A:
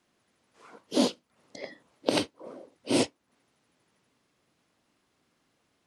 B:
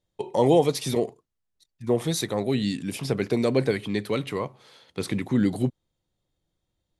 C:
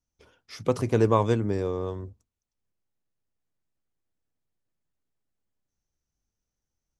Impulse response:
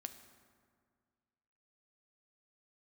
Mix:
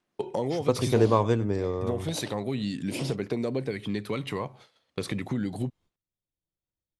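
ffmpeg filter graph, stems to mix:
-filter_complex "[0:a]volume=-9dB,asplit=2[a][b];[b]volume=-7.5dB[c];[1:a]agate=range=-20dB:threshold=-49dB:ratio=16:detection=peak,volume=2dB[d];[2:a]agate=range=-33dB:threshold=-48dB:ratio=3:detection=peak,volume=-0.5dB,asplit=2[e][f];[f]volume=-19dB[g];[a][d]amix=inputs=2:normalize=0,aphaser=in_gain=1:out_gain=1:delay=1.8:decay=0.27:speed=0.3:type=triangular,acompressor=threshold=-27dB:ratio=5,volume=0dB[h];[c][g]amix=inputs=2:normalize=0,aecho=0:1:97:1[i];[e][h][i]amix=inputs=3:normalize=0,highshelf=f=8.3k:g=-5"

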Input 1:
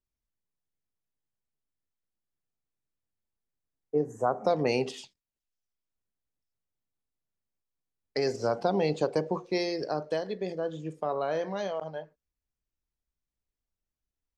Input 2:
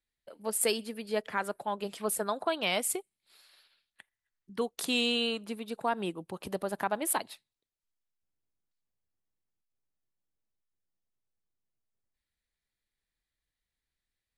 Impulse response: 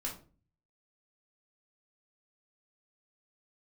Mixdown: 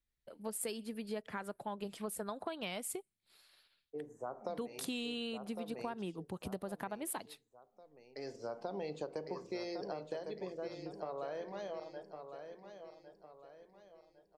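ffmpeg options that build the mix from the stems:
-filter_complex "[0:a]bass=f=250:g=-12,treble=f=4k:g=-1,bandreject=f=53.26:t=h:w=4,bandreject=f=106.52:t=h:w=4,bandreject=f=159.78:t=h:w=4,bandreject=f=213.04:t=h:w=4,bandreject=f=266.3:t=h:w=4,bandreject=f=319.56:t=h:w=4,dynaudnorm=f=200:g=31:m=4dB,volume=-13.5dB,asplit=3[a][b][c];[b]volume=-16dB[d];[c]volume=-9.5dB[e];[1:a]volume=-5.5dB,asplit=2[f][g];[g]apad=whole_len=633948[h];[a][h]sidechaincompress=threshold=-53dB:ratio=8:attack=16:release=1140[i];[2:a]atrim=start_sample=2205[j];[d][j]afir=irnorm=-1:irlink=0[k];[e]aecho=0:1:1106|2212|3318|4424|5530:1|0.39|0.152|0.0593|0.0231[l];[i][f][k][l]amix=inputs=4:normalize=0,lowshelf=f=230:g=11.5,acompressor=threshold=-37dB:ratio=5"

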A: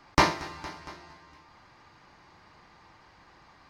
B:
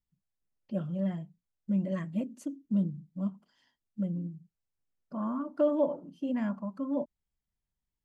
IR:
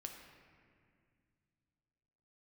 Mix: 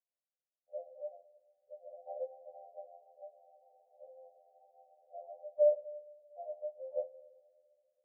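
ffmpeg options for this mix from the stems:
-filter_complex "[0:a]dynaudnorm=f=240:g=3:m=16.5dB,adelay=1900,volume=-12dB[a];[1:a]aphaser=in_gain=1:out_gain=1:delay=2.8:decay=0.26:speed=0.3:type=sinusoidal,volume=-1dB,asplit=3[b][c][d];[b]atrim=end=5.72,asetpts=PTS-STARTPTS,afade=t=out:st=5.716:d=0.004:c=hsin[e];[c]atrim=start=5.72:end=6.38,asetpts=PTS-STARTPTS,volume=0[f];[d]atrim=start=6.38,asetpts=PTS-STARTPTS,afade=t=in:d=0.004:c=hsin[g];[e][f][g]concat=n=3:v=0:a=1,asplit=2[h][i];[i]volume=-5dB[j];[2:a]atrim=start_sample=2205[k];[j][k]afir=irnorm=-1:irlink=0[l];[a][h][l]amix=inputs=3:normalize=0,asuperpass=centerf=600:order=20:qfactor=1.9,afftfilt=real='re*2*eq(mod(b,4),0)':imag='im*2*eq(mod(b,4),0)':win_size=2048:overlap=0.75"

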